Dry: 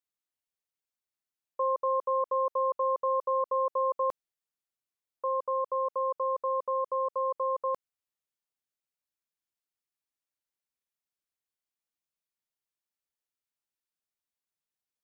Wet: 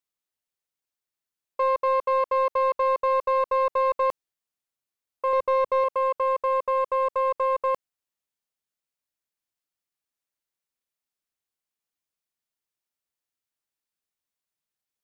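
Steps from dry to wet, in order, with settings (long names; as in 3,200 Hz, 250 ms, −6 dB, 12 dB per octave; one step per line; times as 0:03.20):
0:05.33–0:05.84: low-shelf EQ 350 Hz +11.5 dB
leveller curve on the samples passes 1
level +4 dB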